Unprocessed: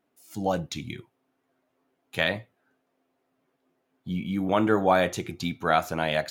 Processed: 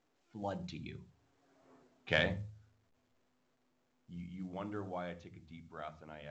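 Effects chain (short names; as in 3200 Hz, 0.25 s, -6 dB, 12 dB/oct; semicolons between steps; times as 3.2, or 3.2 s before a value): Doppler pass-by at 1.72, 15 m/s, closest 1.3 m; low-pass opened by the level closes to 1900 Hz, open at -44.5 dBFS; soft clip -24.5 dBFS, distortion -19 dB; air absorption 51 m; on a send at -19.5 dB: reverb RT60 0.30 s, pre-delay 65 ms; on the sum: gain +10 dB; µ-law 128 kbps 16000 Hz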